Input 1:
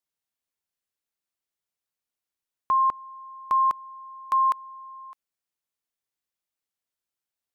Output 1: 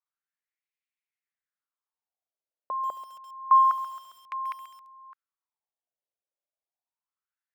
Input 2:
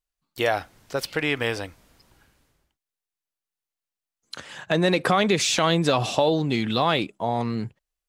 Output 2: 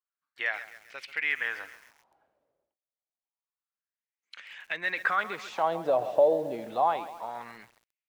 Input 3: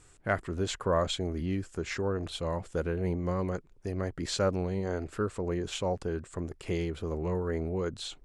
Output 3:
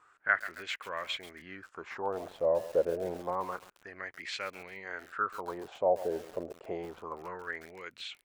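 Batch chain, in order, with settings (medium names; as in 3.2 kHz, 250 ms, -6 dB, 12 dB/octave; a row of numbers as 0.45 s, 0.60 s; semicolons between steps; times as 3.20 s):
wah-wah 0.28 Hz 560–2300 Hz, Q 4.1; bit-crushed delay 135 ms, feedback 55%, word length 8-bit, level -13.5 dB; peak normalisation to -12 dBFS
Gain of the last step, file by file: +5.0 dB, +2.5 dB, +9.5 dB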